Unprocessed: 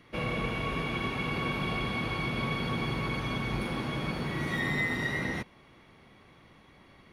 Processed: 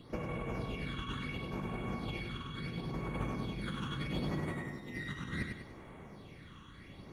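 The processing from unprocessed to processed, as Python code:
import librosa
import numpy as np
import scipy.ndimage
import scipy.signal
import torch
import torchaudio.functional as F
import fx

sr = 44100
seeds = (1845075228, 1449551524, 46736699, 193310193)

p1 = fx.over_compress(x, sr, threshold_db=-36.0, ratio=-0.5)
p2 = fx.phaser_stages(p1, sr, stages=8, low_hz=620.0, high_hz=5000.0, hz=0.72, feedback_pct=40)
p3 = p2 + fx.echo_feedback(p2, sr, ms=99, feedback_pct=42, wet_db=-5.0, dry=0)
y = p3 * 10.0 ** (-2.0 / 20.0)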